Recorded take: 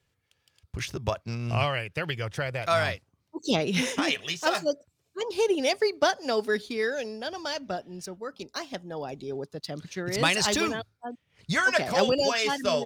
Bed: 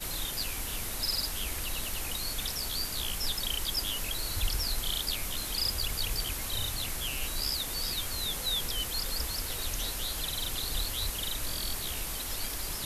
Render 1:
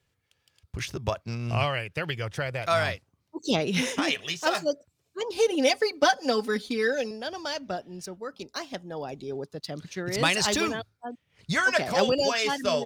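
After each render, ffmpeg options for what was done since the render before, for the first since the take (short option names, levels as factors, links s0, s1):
-filter_complex "[0:a]asettb=1/sr,asplit=3[s0][s1][s2];[s0]atrim=end=5.364[s3];[s1]atrim=start=5.36:end=7.11,asetpts=PTS-STARTPTS,afade=t=in:d=0.004:c=qsin,afade=t=out:st=1.746:d=0.004:c=qsin,aecho=1:1:3.9:0.88,atrim=end_sample=77175[s4];[s2]atrim=start=7.106[s5];[s3][s4]acrossfade=d=0.004:c1=hsin:c2=qsin[s6];[s6][s5]acrossfade=d=0.004:c1=qsin:c2=hsin"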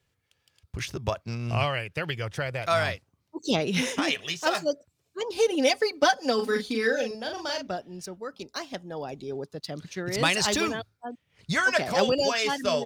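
-filter_complex "[0:a]asettb=1/sr,asplit=3[s0][s1][s2];[s0]atrim=end=6.354[s3];[s1]atrim=start=6.35:end=7.67,asetpts=PTS-STARTPTS,afade=t=in:d=0.004:c=qsin,afade=t=out:st=1.316:d=0.004:c=qsin,asplit=2[s4][s5];[s5]adelay=40,volume=0.562[s6];[s4][s6]amix=inputs=2:normalize=0,atrim=end_sample=58212[s7];[s2]atrim=start=7.666[s8];[s3][s7]acrossfade=d=0.004:c1=hsin:c2=qsin[s9];[s9][s8]acrossfade=d=0.004:c1=qsin:c2=hsin"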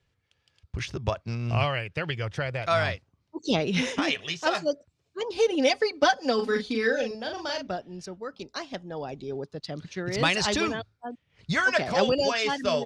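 -af "lowpass=5800,lowshelf=f=75:g=6.5"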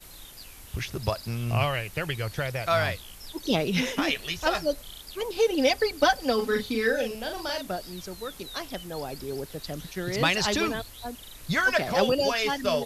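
-filter_complex "[1:a]volume=0.266[s0];[0:a][s0]amix=inputs=2:normalize=0"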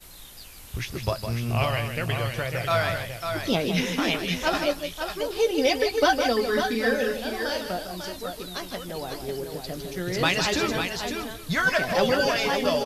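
-filter_complex "[0:a]asplit=2[s0][s1];[s1]adelay=17,volume=0.282[s2];[s0][s2]amix=inputs=2:normalize=0,asplit=2[s3][s4];[s4]aecho=0:1:157|548|775:0.398|0.473|0.1[s5];[s3][s5]amix=inputs=2:normalize=0"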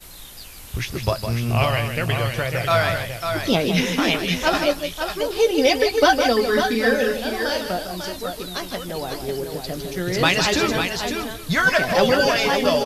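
-af "volume=1.78"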